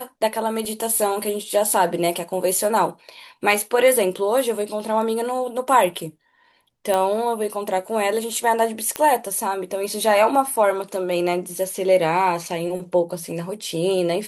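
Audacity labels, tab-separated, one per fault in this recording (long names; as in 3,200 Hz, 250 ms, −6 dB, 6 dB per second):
0.650000	0.650000	drop-out 2.7 ms
6.940000	6.940000	click −9 dBFS
8.960000	8.960000	click −8 dBFS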